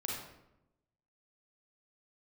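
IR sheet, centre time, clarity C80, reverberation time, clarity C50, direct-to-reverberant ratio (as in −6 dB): 61 ms, 4.0 dB, 0.90 s, 0.0 dB, −3.5 dB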